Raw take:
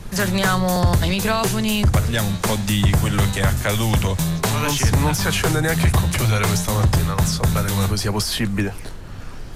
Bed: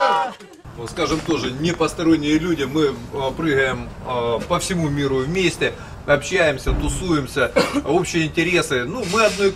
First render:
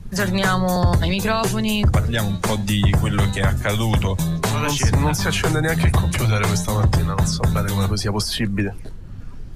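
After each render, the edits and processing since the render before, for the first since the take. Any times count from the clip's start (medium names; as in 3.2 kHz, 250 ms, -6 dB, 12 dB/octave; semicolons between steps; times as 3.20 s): noise reduction 12 dB, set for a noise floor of -32 dBFS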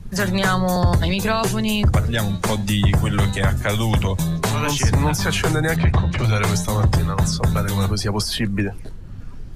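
5.76–6.24 s: distance through air 160 m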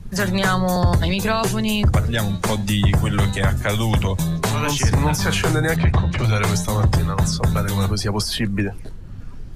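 4.87–5.74 s: doubling 41 ms -11.5 dB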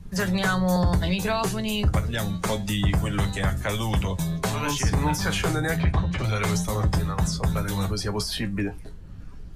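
feedback comb 60 Hz, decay 0.17 s, harmonics odd, mix 70%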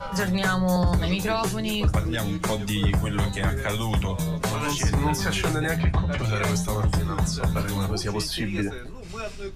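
add bed -18.5 dB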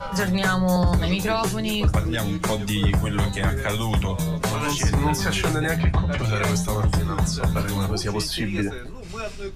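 trim +2 dB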